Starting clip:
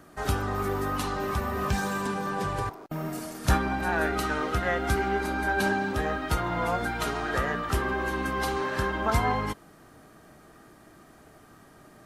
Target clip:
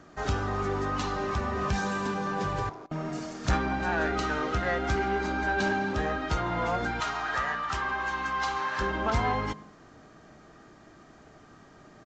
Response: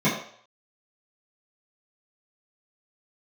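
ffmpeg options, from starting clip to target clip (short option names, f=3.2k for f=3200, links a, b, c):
-filter_complex "[0:a]asettb=1/sr,asplit=3[a][b][c];[a]atrim=end=7.004[d];[b]atrim=start=7:end=8.81,asetpts=PTS-STARTPTS,afade=t=in:d=0.004:c=qsin,afade=t=out:st=1.806:d=0.004:c=qsin,lowshelf=f=640:t=q:w=1.5:g=-9.5[e];[c]atrim=start=8.806[f];[d][e]acrossfade=d=0.004:c1=hsin:c2=qsin[g];[g][f]acrossfade=d=0.004:c1=qsin:c2=hsin,asoftclip=type=tanh:threshold=-18.5dB,asplit=2[h][i];[1:a]atrim=start_sample=2205,adelay=87[j];[i][j]afir=irnorm=-1:irlink=0,volume=-39.5dB[k];[h][k]amix=inputs=2:normalize=0,aresample=16000,aresample=44100"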